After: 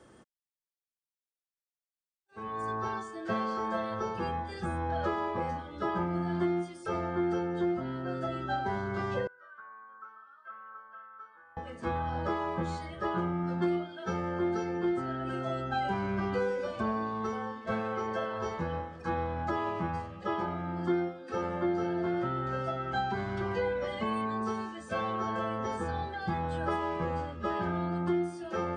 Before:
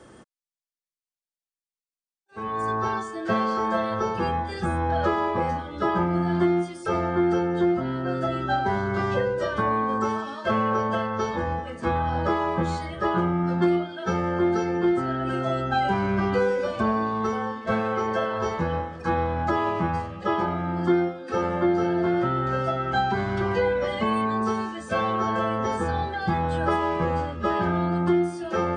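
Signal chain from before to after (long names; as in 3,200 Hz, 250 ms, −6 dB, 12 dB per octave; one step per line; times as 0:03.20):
0:09.27–0:11.57: resonant band-pass 1,400 Hz, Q 14
level −8 dB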